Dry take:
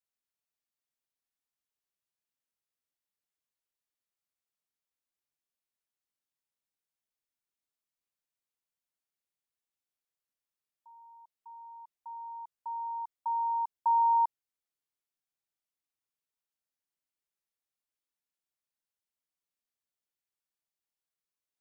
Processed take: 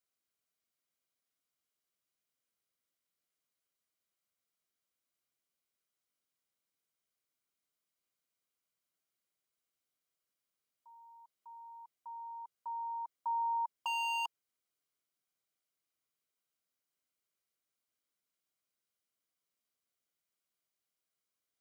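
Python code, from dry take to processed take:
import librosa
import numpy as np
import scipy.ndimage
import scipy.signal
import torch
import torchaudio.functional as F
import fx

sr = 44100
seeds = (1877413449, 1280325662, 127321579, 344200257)

y = fx.notch_comb(x, sr, f0_hz=880.0)
y = 10.0 ** (-33.5 / 20.0) * (np.abs((y / 10.0 ** (-33.5 / 20.0) + 3.0) % 4.0 - 2.0) - 1.0)
y = y * librosa.db_to_amplitude(4.0)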